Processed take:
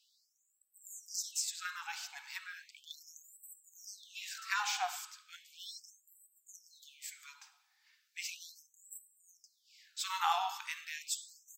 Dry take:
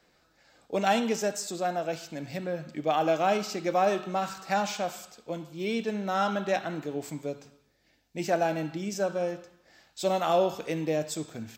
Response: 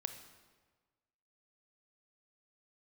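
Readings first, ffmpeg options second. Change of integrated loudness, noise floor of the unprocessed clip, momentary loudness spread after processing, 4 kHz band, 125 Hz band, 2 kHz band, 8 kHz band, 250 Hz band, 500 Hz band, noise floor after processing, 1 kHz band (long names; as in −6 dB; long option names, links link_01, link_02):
−10.0 dB, −67 dBFS, 20 LU, −3.0 dB, below −40 dB, −6.0 dB, −0.5 dB, below −40 dB, −29.5 dB, −77 dBFS, −11.0 dB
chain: -af "afftfilt=real='re*gte(b*sr/1024,710*pow(7700/710,0.5+0.5*sin(2*PI*0.36*pts/sr)))':imag='im*gte(b*sr/1024,710*pow(7700/710,0.5+0.5*sin(2*PI*0.36*pts/sr)))':win_size=1024:overlap=0.75"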